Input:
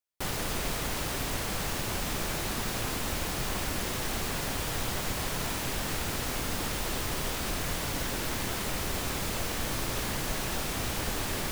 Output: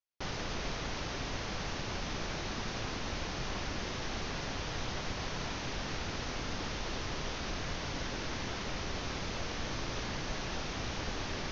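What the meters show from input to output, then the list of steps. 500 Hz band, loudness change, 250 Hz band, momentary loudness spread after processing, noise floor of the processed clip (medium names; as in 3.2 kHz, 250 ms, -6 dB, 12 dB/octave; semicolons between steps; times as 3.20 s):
-4.5 dB, -6.0 dB, -4.5 dB, 0 LU, -39 dBFS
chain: steep low-pass 6.4 kHz 96 dB/octave; trim -4.5 dB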